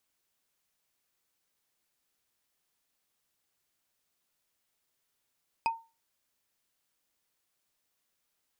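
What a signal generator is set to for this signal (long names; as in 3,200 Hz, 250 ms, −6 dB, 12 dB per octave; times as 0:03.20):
struck wood, lowest mode 911 Hz, decay 0.29 s, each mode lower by 6 dB, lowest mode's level −22 dB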